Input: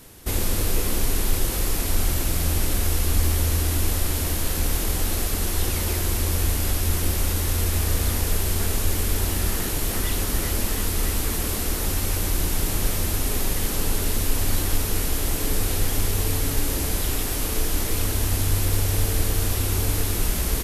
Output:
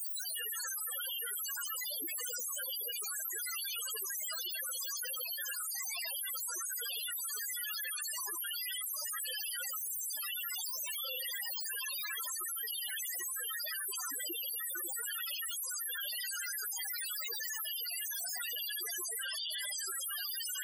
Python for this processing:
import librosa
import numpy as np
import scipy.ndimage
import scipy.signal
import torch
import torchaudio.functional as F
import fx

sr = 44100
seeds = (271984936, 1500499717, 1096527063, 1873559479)

y = fx.lower_of_two(x, sr, delay_ms=0.63)
y = fx.phaser_stages(y, sr, stages=4, low_hz=400.0, high_hz=1600.0, hz=1.2, feedback_pct=10)
y = fx.lowpass(y, sr, hz=9200.0, slope=12, at=(19.05, 19.87))
y = fx.rev_freeverb(y, sr, rt60_s=2.2, hf_ratio=0.8, predelay_ms=45, drr_db=-0.5)
y = fx.spec_gate(y, sr, threshold_db=-30, keep='weak')
y = fx.hum_notches(y, sr, base_hz=50, count=10, at=(0.86, 1.46), fade=0.02)
y = fx.echo_feedback(y, sr, ms=90, feedback_pct=51, wet_db=-13)
y = fx.rider(y, sr, range_db=3, speed_s=0.5)
y = fx.high_shelf(y, sr, hz=3200.0, db=3.0, at=(9.77, 10.17))
y = fx.spec_topn(y, sr, count=4)
y = fx.band_shelf(y, sr, hz=650.0, db=-9.5, octaves=1.7)
y = fx.env_flatten(y, sr, amount_pct=100)
y = F.gain(torch.from_numpy(y), 6.0).numpy()